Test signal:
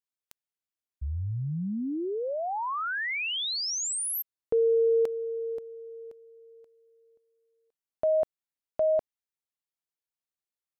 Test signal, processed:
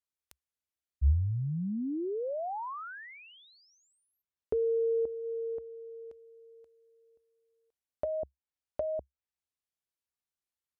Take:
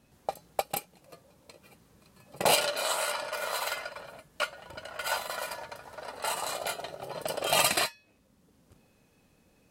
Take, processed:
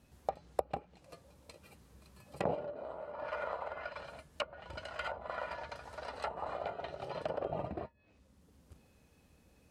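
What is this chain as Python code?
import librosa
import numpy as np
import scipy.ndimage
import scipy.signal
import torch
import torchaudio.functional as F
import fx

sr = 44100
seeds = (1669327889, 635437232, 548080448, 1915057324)

y = fx.env_lowpass_down(x, sr, base_hz=440.0, full_db=-27.0)
y = fx.peak_eq(y, sr, hz=68.0, db=13.0, octaves=0.63)
y = y * librosa.db_to_amplitude(-2.5)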